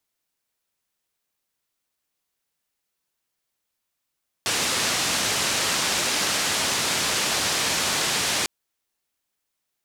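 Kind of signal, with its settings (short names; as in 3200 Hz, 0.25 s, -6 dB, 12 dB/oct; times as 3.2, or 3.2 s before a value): noise band 87–7000 Hz, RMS -24 dBFS 4.00 s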